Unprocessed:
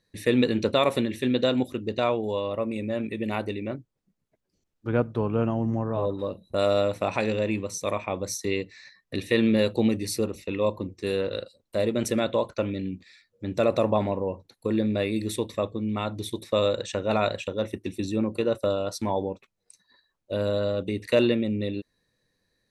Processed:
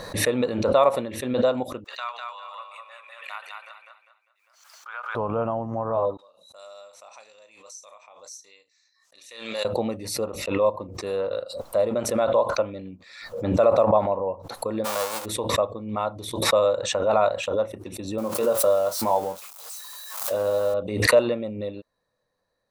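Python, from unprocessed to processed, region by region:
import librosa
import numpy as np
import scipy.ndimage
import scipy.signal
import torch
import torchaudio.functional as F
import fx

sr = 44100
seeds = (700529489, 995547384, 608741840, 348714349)

y = fx.chain(x, sr, fx.highpass(hz=1300.0, slope=24),
    fx.echo_feedback(ms=200, feedback_pct=34, wet_db=-3.5), at=(1.84, 5.15))
y = fx.chain(y, sr, fx.bandpass_q(hz=6600.0, q=2.2),
    fx.doubler(ms=35.0, db=-10.5), at=(6.17, 9.65))
y = fx.envelope_flatten(y, sr, power=0.1, at=(14.84, 15.24), fade=0.02)
y = fx.highpass(y, sr, hz=150.0, slope=12, at=(14.84, 15.24), fade=0.02)
y = fx.peak_eq(y, sr, hz=490.0, db=10.0, octaves=0.26, at=(14.84, 15.24), fade=0.02)
y = fx.chain(y, sr, fx.crossing_spikes(level_db=-25.0),
    fx.highpass(hz=99.0, slope=12),
    fx.doubler(ms=22.0, db=-8.5), at=(18.18, 20.74))
y = fx.band_shelf(y, sr, hz=830.0, db=13.0, octaves=1.7)
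y = fx.pre_swell(y, sr, db_per_s=64.0)
y = y * 10.0 ** (-7.5 / 20.0)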